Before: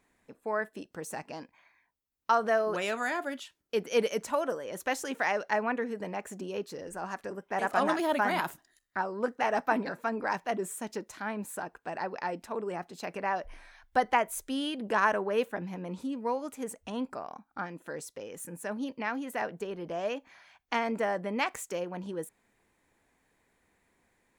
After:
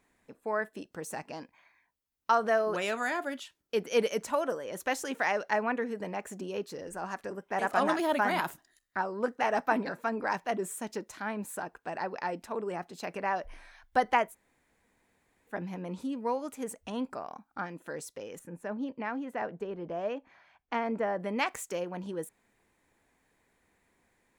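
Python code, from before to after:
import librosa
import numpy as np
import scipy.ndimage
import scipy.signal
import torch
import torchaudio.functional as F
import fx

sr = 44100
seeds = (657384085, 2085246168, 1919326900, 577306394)

y = fx.lowpass(x, sr, hz=1400.0, slope=6, at=(18.39, 21.2))
y = fx.edit(y, sr, fx.room_tone_fill(start_s=14.3, length_s=1.21, crossfade_s=0.1), tone=tone)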